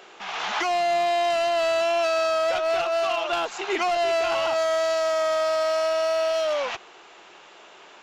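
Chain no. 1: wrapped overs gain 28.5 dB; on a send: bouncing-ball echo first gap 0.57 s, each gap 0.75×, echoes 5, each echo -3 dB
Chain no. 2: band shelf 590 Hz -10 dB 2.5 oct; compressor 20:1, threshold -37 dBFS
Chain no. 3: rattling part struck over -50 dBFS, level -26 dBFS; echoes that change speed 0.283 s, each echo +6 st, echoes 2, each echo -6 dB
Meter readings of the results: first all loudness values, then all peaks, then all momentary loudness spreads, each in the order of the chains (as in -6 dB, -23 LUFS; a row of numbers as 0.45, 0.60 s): -28.5, -40.0, -22.5 LUFS; -20.0, -28.0, -13.0 dBFS; 4, 11, 5 LU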